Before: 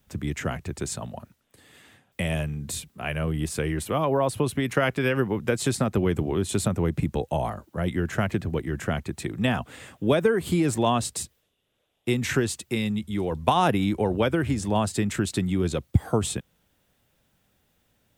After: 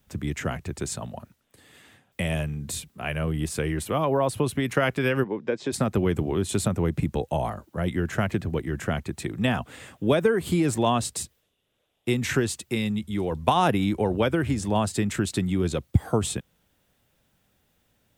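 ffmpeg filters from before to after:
-filter_complex "[0:a]asplit=3[s0][s1][s2];[s0]afade=t=out:st=5.23:d=0.02[s3];[s1]highpass=270,equalizer=f=730:t=q:w=4:g=-5,equalizer=f=1300:t=q:w=4:g=-10,equalizer=f=2000:t=q:w=4:g=-5,equalizer=f=2900:t=q:w=4:g=-9,equalizer=f=4200:t=q:w=4:g=-8,lowpass=f=4500:w=0.5412,lowpass=f=4500:w=1.3066,afade=t=in:st=5.23:d=0.02,afade=t=out:st=5.72:d=0.02[s4];[s2]afade=t=in:st=5.72:d=0.02[s5];[s3][s4][s5]amix=inputs=3:normalize=0"

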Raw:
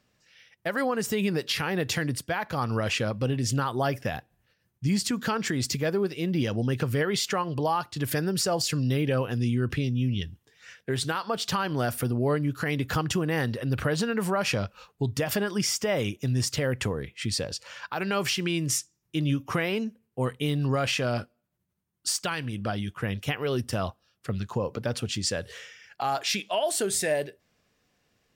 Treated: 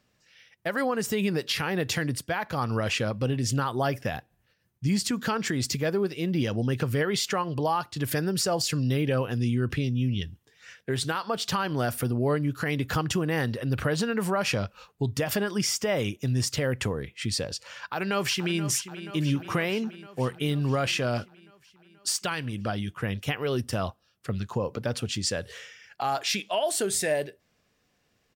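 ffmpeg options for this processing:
-filter_complex "[0:a]asplit=2[s0][s1];[s1]afade=t=in:st=17.67:d=0.01,afade=t=out:st=18.62:d=0.01,aecho=0:1:480|960|1440|1920|2400|2880|3360|3840|4320:0.237137|0.165996|0.116197|0.0813381|0.0569367|0.0398557|0.027899|0.0195293|0.0136705[s2];[s0][s2]amix=inputs=2:normalize=0"

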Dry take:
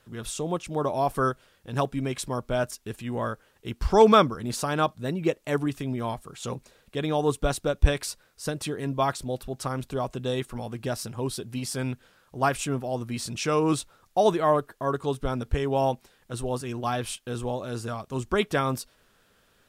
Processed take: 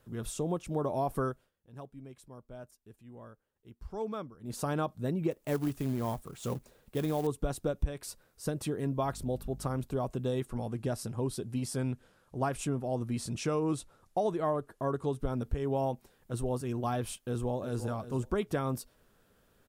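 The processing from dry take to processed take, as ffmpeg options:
-filter_complex "[0:a]asettb=1/sr,asplit=3[s0][s1][s2];[s0]atrim=end=5.314[s3];[s1]atrim=start=5.31:end=7.27,asetpts=PTS-STARTPTS,afade=t=in:d=0.004:c=qsin,afade=t=out:st=1.956:d=0.004:c=qsin,acrusher=bits=3:mode=log:mix=0:aa=0.000001[s4];[s2]atrim=start=7.266[s5];[s3][s4]acrossfade=d=0.004:c1=hsin:c2=qsin[s6];[s6][s5]acrossfade=d=0.004:c1=qsin:c2=hsin,asettb=1/sr,asplit=3[s7][s8][s9];[s7]atrim=end=9.044[s10];[s8]atrim=start=9.04:end=9.77,asetpts=PTS-STARTPTS,afade=t=in:d=0.004:c=qsin,afade=t=out:st=0.726:d=0.004:c=qsin,aeval=exprs='val(0)+0.00501*(sin(2*PI*50*n/s)+sin(2*PI*2*50*n/s)/2+sin(2*PI*3*50*n/s)/3+sin(2*PI*4*50*n/s)/4+sin(2*PI*5*50*n/s)/5)':c=same[s11];[s9]atrim=start=9.766[s12];[s10][s11]acrossfade=d=0.004:c1=hsin:c2=qsin[s13];[s13][s12]acrossfade=d=0.004:c1=qsin:c2=hsin,asettb=1/sr,asplit=3[s14][s15][s16];[s14]atrim=end=10.474[s17];[s15]atrim=start=10.47:end=15.2,asetpts=PTS-STARTPTS,afade=t=in:d=0.004:c=qsin,afade=t=out:st=4.726:d=0.004:c=qsin,lowpass=f=12000:w=0.5412,lowpass=f=12000:w=1.3066[s18];[s16]atrim=start=15.196[s19];[s17][s18]acrossfade=d=0.004:c1=hsin:c2=qsin[s20];[s20][s19]acrossfade=d=0.004:c1=qsin:c2=hsin,asplit=2[s21][s22];[s22]afade=t=in:st=17.2:d=0.01,afade=t=out:st=17.89:d=0.01,aecho=0:1:350|700:0.237137|0.0355706[s23];[s21][s23]amix=inputs=2:normalize=0,asplit=3[s24][s25][s26];[s24]atrim=end=1.52,asetpts=PTS-STARTPTS,afade=t=out:st=1.24:d=0.28:silence=0.125893[s27];[s25]atrim=start=1.52:end=4.4,asetpts=PTS-STARTPTS,volume=0.126[s28];[s26]atrim=start=4.4,asetpts=PTS-STARTPTS,afade=t=in:d=0.28:silence=0.125893[s29];[s27][s28][s29]concat=n=3:v=0:a=1,equalizer=f=3300:w=0.31:g=-9.5,acompressor=threshold=0.0447:ratio=5"

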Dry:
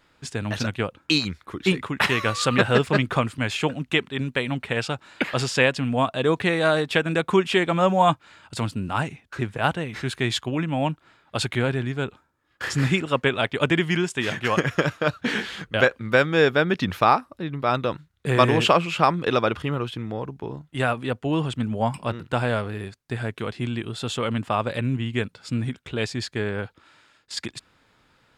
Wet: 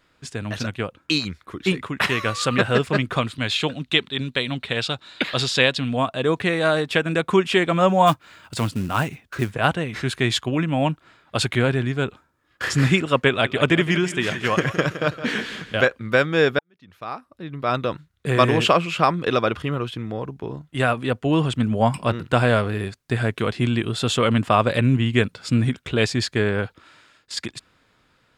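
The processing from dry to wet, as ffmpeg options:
-filter_complex "[0:a]asettb=1/sr,asplit=3[s0][s1][s2];[s0]atrim=end=3.174[s3];[s1]atrim=start=3.17:end=5.97,asetpts=PTS-STARTPTS,afade=t=in:d=0.004:c=qsin,afade=t=out:st=2.796:d=0.004:c=qsin,equalizer=f=3800:t=o:w=0.52:g=13[s4];[s2]atrim=start=5.966[s5];[s3][s4]acrossfade=d=0.004:c1=hsin:c2=qsin[s6];[s6][s5]acrossfade=d=0.004:c1=qsin:c2=hsin,asplit=3[s7][s8][s9];[s7]afade=t=out:st=8.06:d=0.02[s10];[s8]acrusher=bits=5:mode=log:mix=0:aa=0.000001,afade=t=in:st=8.06:d=0.02,afade=t=out:st=9.53:d=0.02[s11];[s9]afade=t=in:st=9.53:d=0.02[s12];[s10][s11][s12]amix=inputs=3:normalize=0,asettb=1/sr,asplit=3[s13][s14][s15];[s13]atrim=end=13.284[s16];[s14]atrim=start=13.28:end=15.83,asetpts=PTS-STARTPTS,afade=t=in:d=0.004:c=qsin,afade=t=out:st=2.546:d=0.004:c=qsin,aecho=1:1:165|330|495|660:0.237|0.0877|0.0325|0.012,atrim=end_sample=112455[s17];[s15]atrim=start=15.826[s18];[s16][s17]acrossfade=d=0.004:c1=hsin:c2=qsin[s19];[s19][s18]acrossfade=d=0.004:c1=qsin:c2=hsin,asplit=2[s20][s21];[s20]atrim=end=16.59,asetpts=PTS-STARTPTS,afade=t=out:st=16.586:d=0.004:c=hsin[s22];[s21]atrim=start=16.59,asetpts=PTS-STARTPTS,afade=t=in:d=1.13:c=qua[s23];[s22][s23]concat=n=2:v=0:a=1,dynaudnorm=f=340:g=11:m=3.76,bandreject=f=860:w=12,volume=0.891"

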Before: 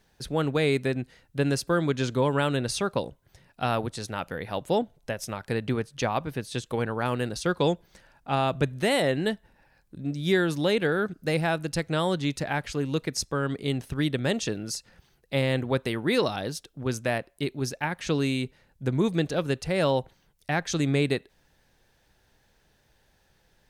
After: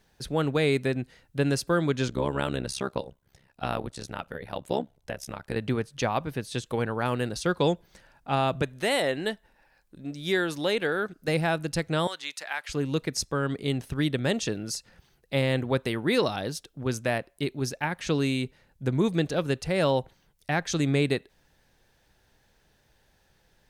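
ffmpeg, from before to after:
-filter_complex "[0:a]asettb=1/sr,asplit=3[s0][s1][s2];[s0]atrim=end=2.084[s3];[s1]atrim=start=2.08:end=5.56,asetpts=PTS-STARTPTS,afade=t=in:d=0.004:c=qsin,afade=t=out:st=3.476:d=0.004:c=qsin,tremolo=f=67:d=0.919[s4];[s2]atrim=start=5.556[s5];[s3][s4]acrossfade=d=0.004:c1=hsin:c2=qsin[s6];[s6][s5]acrossfade=d=0.004:c1=qsin:c2=hsin,asettb=1/sr,asplit=3[s7][s8][s9];[s7]atrim=end=8.624[s10];[s8]atrim=start=8.62:end=11.28,asetpts=PTS-STARTPTS,afade=t=in:d=0.004:c=qsin,afade=t=out:st=2.656:d=0.004:c=qsin,equalizer=f=110:t=o:w=2.6:g=-9.5[s11];[s9]atrim=start=11.276[s12];[s10][s11]acrossfade=d=0.004:c1=hsin:c2=qsin[s13];[s13][s12]acrossfade=d=0.004:c1=qsin:c2=hsin,asettb=1/sr,asplit=3[s14][s15][s16];[s14]atrim=end=12.074[s17];[s15]atrim=start=12.07:end=12.69,asetpts=PTS-STARTPTS,afade=t=in:d=0.004:c=qsin,afade=t=out:st=0.616:d=0.004:c=qsin,highpass=1100[s18];[s16]atrim=start=12.686[s19];[s17][s18]acrossfade=d=0.004:c1=hsin:c2=qsin[s20];[s20][s19]acrossfade=d=0.004:c1=qsin:c2=hsin"

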